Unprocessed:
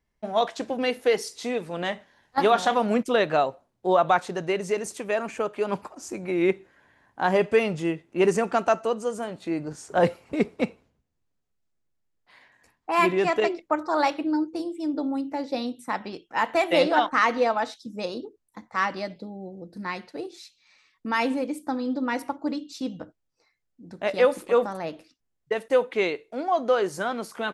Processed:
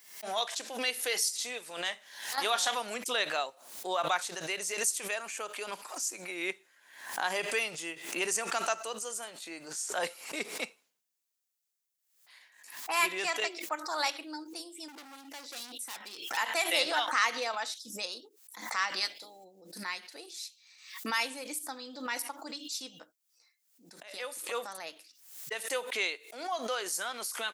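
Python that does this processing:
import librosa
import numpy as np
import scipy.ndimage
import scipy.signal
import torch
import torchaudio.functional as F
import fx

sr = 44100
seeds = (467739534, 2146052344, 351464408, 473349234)

y = fx.overload_stage(x, sr, gain_db=33.5, at=(14.88, 16.37))
y = fx.spec_clip(y, sr, under_db=21, at=(19.0, 19.43), fade=0.02)
y = fx.edit(y, sr, fx.fade_in_from(start_s=24.03, length_s=0.62, floor_db=-23.0), tone=tone)
y = scipy.signal.sosfilt(scipy.signal.butter(2, 170.0, 'highpass', fs=sr, output='sos'), y)
y = np.diff(y, prepend=0.0)
y = fx.pre_swell(y, sr, db_per_s=82.0)
y = y * librosa.db_to_amplitude(7.5)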